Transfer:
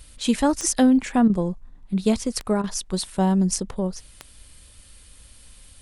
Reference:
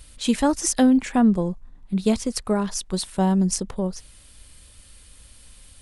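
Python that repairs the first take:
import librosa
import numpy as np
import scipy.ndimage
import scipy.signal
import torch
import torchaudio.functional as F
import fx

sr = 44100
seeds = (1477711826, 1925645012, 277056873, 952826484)

y = fx.fix_declick_ar(x, sr, threshold=10.0)
y = fx.fix_interpolate(y, sr, at_s=(1.28, 2.62), length_ms=16.0)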